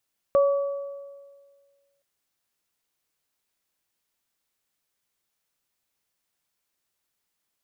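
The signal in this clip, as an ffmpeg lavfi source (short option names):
-f lavfi -i "aevalsrc='0.188*pow(10,-3*t/1.71)*sin(2*PI*560*t)+0.0531*pow(10,-3*t/1.27)*sin(2*PI*1140*t)':d=1.67:s=44100"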